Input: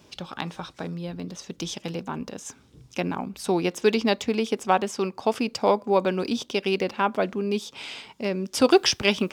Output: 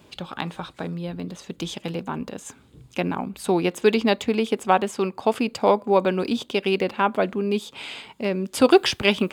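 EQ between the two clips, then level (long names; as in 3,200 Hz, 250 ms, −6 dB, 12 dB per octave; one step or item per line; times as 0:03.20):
parametric band 5,600 Hz −12 dB 0.35 octaves
+2.5 dB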